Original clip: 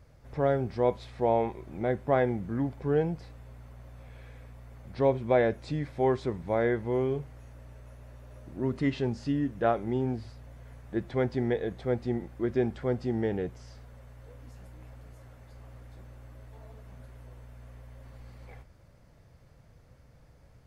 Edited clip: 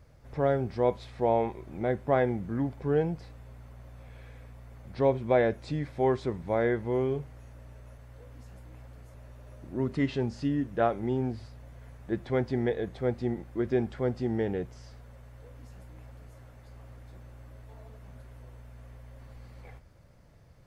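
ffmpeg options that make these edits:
-filter_complex "[0:a]asplit=3[s0][s1][s2];[s0]atrim=end=7.982[s3];[s1]atrim=start=14.058:end=15.222[s4];[s2]atrim=start=7.978[s5];[s3][s4]acrossfade=d=0.004:c1=hsin:c2=hsin[s6];[s6][s5]acrossfade=d=0.004:c1=hsin:c2=hsin"

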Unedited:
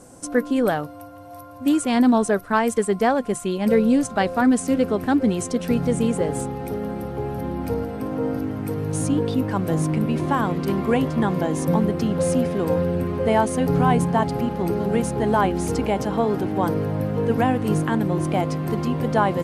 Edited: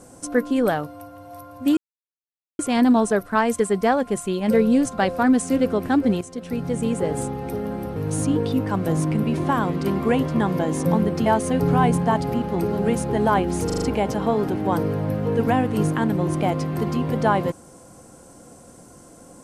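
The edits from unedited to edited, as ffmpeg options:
-filter_complex "[0:a]asplit=9[s0][s1][s2][s3][s4][s5][s6][s7][s8];[s0]atrim=end=1.77,asetpts=PTS-STARTPTS,afade=t=out:st=1.766:d=0.004:c=hsin,apad=pad_dur=0.82[s9];[s1]atrim=start=1.77:end=5.39,asetpts=PTS-STARTPTS,afade=t=in:d=0.004:c=hsin,afade=t=out:st=3.616:d=0.004:c=hsin:silence=0.237137[s10];[s2]atrim=start=5.39:end=7.142,asetpts=PTS-STARTPTS,afade=t=in:d=0.94:silence=0.237137[s11];[s3]atrim=start=8.778:end=12.082[s12];[s4]atrim=start=13.328:end=15.772[s13];[s5]atrim=start=15.728:end=15.772[s14];[s6]atrim=start=15.728:end=15.772[s15];[s7]atrim=start=15.728:end=15.772[s16];[s8]atrim=start=15.728[s17];[s9][s10][s11]concat=n=3:v=0:a=1[s18];[s18][s12]acrossfade=d=0.004:c1=hsin:c2=hsin[s19];[s19][s13]acrossfade=d=0.004:c1=hsin:c2=hsin[s20];[s20][s14]acrossfade=d=0.004:c1=hsin:c2=hsin[s21];[s21][s15]acrossfade=d=0.004:c1=hsin:c2=hsin[s22];[s22][s16]acrossfade=d=0.004:c1=hsin:c2=hsin[s23];[s23][s17]acrossfade=d=0.004:c1=hsin:c2=hsin"

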